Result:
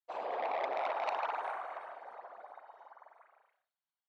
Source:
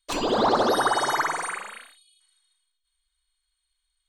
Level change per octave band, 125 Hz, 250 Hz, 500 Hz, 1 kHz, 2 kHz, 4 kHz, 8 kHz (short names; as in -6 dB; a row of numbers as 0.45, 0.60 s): under -35 dB, -28.0 dB, -12.5 dB, -11.0 dB, -14.5 dB, -22.0 dB, under -30 dB